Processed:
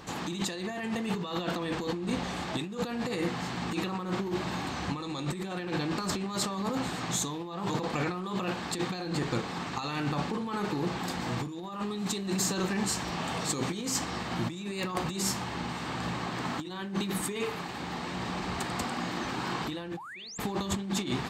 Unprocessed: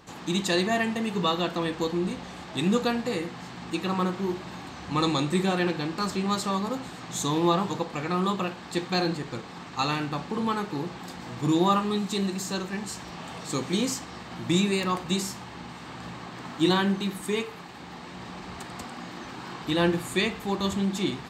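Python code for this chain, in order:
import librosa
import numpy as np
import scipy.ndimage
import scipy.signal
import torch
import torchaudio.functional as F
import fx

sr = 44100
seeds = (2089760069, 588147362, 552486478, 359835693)

y = fx.spec_paint(x, sr, seeds[0], shape='rise', start_s=19.97, length_s=0.41, low_hz=750.0, high_hz=7800.0, level_db=-17.0)
y = fx.over_compress(y, sr, threshold_db=-33.0, ratio=-1.0)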